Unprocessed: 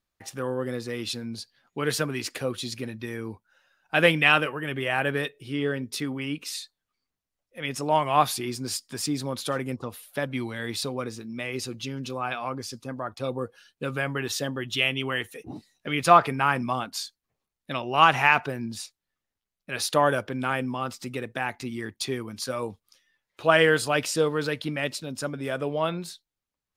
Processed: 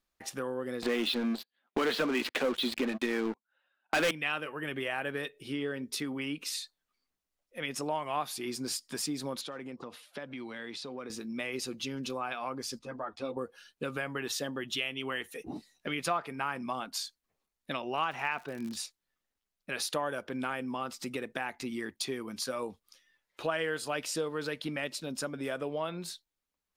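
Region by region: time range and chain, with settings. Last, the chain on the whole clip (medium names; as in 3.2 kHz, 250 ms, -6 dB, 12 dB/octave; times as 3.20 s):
0.82–4.11 s: elliptic band-pass 210–3600 Hz + waveshaping leveller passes 5
9.41–11.10 s: compression, threshold -36 dBFS + band-pass 120–5500 Hz
12.79–13.37 s: distance through air 61 m + three-phase chorus
17.96–18.76 s: treble shelf 8.9 kHz -10.5 dB + crackle 110 per s -32 dBFS
whole clip: peaking EQ 110 Hz -14 dB 0.57 oct; compression 3:1, threshold -33 dBFS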